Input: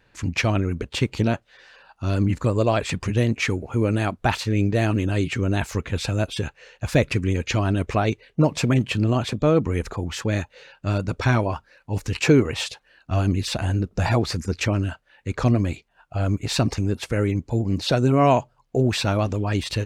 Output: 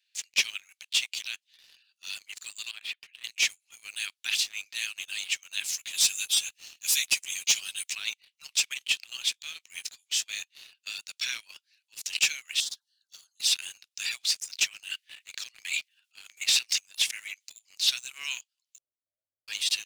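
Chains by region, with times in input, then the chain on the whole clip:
2.71–3.24 s: distance through air 340 m + compression, threshold -22 dBFS
5.73–7.93 s: RIAA curve recording + three-phase chorus
9.32–10.40 s: peaking EQ 940 Hz -6 dB 1.4 oct + doubling 18 ms -10 dB
12.60–13.40 s: Butterworth band-stop 2.3 kHz, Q 1 + phase dispersion lows, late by 141 ms, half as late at 840 Hz + compression 2.5:1, threshold -37 dBFS
14.87–17.56 s: compression 1.5:1, threshold -27 dBFS + transient shaper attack -1 dB, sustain +10 dB + LFO high-pass square 1.4 Hz 360–1900 Hz
18.78–19.48 s: one-bit comparator + steep low-pass 560 Hz 72 dB/octave
whole clip: inverse Chebyshev high-pass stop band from 490 Hz, stop band 80 dB; dynamic bell 4.3 kHz, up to -5 dB, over -49 dBFS, Q 7.4; waveshaping leveller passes 2

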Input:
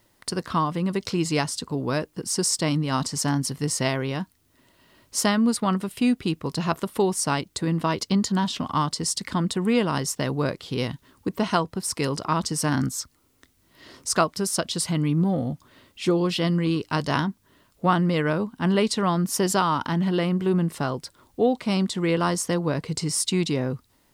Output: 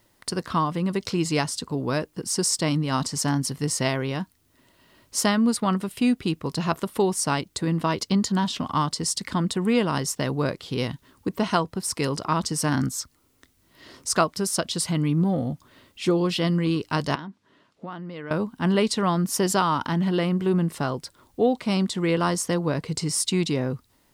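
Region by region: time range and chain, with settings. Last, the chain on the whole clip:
17.15–18.31 s: compression 12:1, threshold -31 dBFS + band-pass 160–4600 Hz
whole clip: none

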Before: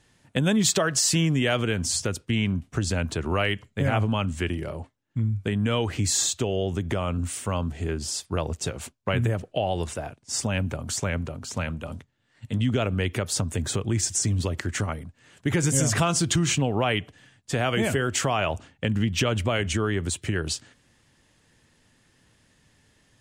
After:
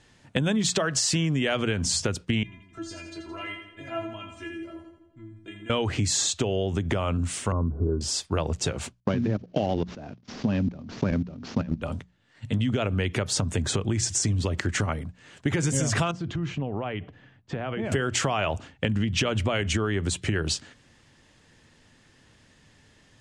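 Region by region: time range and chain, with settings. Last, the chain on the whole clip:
2.43–5.70 s: inharmonic resonator 330 Hz, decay 0.28 s, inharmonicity 0.002 + two-band feedback delay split 490 Hz, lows 137 ms, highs 84 ms, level -8 dB
7.52–8.01 s: CVSD coder 32 kbps + rippled Chebyshev low-pass 1.5 kHz, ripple 9 dB + tilt EQ -3.5 dB/octave
9.00–11.82 s: CVSD coder 32 kbps + peaking EQ 230 Hz +13.5 dB 1.5 oct + level held to a coarse grid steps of 22 dB
16.11–17.92 s: compression 5:1, threshold -29 dBFS + tape spacing loss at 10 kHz 31 dB
whole clip: low-pass 7.3 kHz 12 dB/octave; hum notches 60/120/180 Hz; compression, threshold -26 dBFS; trim +4.5 dB

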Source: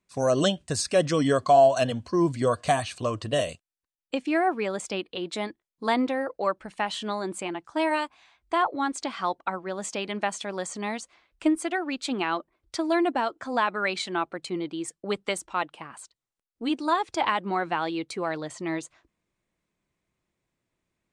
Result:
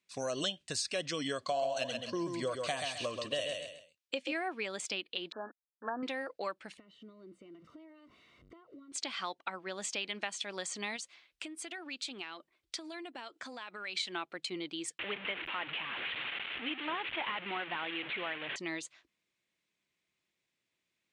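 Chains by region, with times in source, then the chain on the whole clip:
1.38–4.33 s: peaking EQ 550 Hz +8.5 dB 0.23 oct + feedback delay 132 ms, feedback 25%, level -6 dB
5.32–6.03 s: send-on-delta sampling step -37.5 dBFS + brick-wall FIR band-pass 210–1800 Hz + peaking EQ 330 Hz -8.5 dB 0.69 oct
6.77–8.92 s: jump at every zero crossing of -38 dBFS + compression 16:1, threshold -36 dBFS + boxcar filter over 53 samples
10.96–13.97 s: treble shelf 8.4 kHz +5.5 dB + compression 8:1, threshold -35 dBFS
14.99–18.56 s: one-bit delta coder 16 kbps, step -29 dBFS + tilt EQ +1.5 dB/octave
whole clip: frequency weighting D; compression 2.5:1, threshold -28 dBFS; trim -7.5 dB

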